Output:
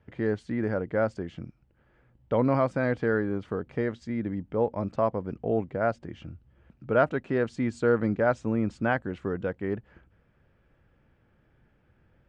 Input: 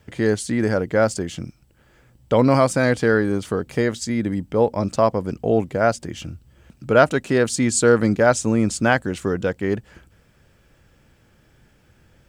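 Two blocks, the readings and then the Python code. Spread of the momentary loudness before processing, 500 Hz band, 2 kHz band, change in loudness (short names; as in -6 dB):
9 LU, -8.0 dB, -9.5 dB, -8.5 dB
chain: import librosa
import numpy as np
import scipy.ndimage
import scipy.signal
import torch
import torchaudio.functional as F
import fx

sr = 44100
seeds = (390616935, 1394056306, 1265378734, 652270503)

y = scipy.signal.sosfilt(scipy.signal.butter(2, 2100.0, 'lowpass', fs=sr, output='sos'), x)
y = y * librosa.db_to_amplitude(-8.0)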